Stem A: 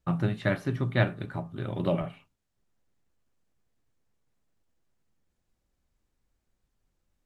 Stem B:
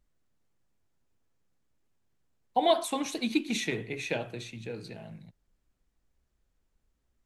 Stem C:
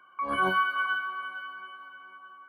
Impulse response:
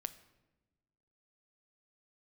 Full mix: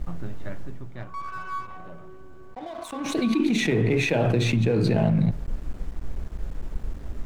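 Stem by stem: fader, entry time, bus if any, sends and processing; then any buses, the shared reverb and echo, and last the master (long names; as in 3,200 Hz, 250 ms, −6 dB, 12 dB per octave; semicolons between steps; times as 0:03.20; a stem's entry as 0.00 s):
−9.0 dB, 0.00 s, send −13.5 dB, automatic ducking −14 dB, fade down 2.00 s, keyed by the second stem
0:00.59 −5.5 dB → 0:00.97 −16 dB → 0:02.90 −16 dB → 0:03.24 −4 dB, 0.00 s, send −8.5 dB, spectral tilt −1.5 dB per octave; envelope flattener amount 100%
−2.5 dB, 0.95 s, no send, compressor on every frequency bin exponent 0.4; LFO wah 0.57 Hz 340–1,300 Hz, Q 5.6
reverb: on, pre-delay 7 ms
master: dead-zone distortion −40.5 dBFS; high-shelf EQ 2,400 Hz −8.5 dB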